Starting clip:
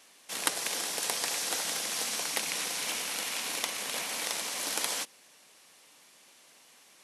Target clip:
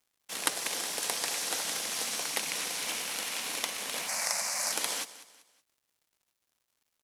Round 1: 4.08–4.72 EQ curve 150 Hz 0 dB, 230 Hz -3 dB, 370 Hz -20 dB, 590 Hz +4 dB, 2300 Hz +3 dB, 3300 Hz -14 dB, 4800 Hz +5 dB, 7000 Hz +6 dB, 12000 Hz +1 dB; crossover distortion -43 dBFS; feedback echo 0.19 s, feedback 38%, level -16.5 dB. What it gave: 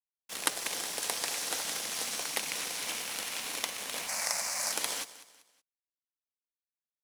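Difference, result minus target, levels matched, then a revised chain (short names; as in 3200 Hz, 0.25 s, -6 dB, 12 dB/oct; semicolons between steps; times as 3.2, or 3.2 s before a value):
crossover distortion: distortion +8 dB
4.08–4.72 EQ curve 150 Hz 0 dB, 230 Hz -3 dB, 370 Hz -20 dB, 590 Hz +4 dB, 2300 Hz +3 dB, 3300 Hz -14 dB, 4800 Hz +5 dB, 7000 Hz +6 dB, 12000 Hz +1 dB; crossover distortion -52 dBFS; feedback echo 0.19 s, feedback 38%, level -16.5 dB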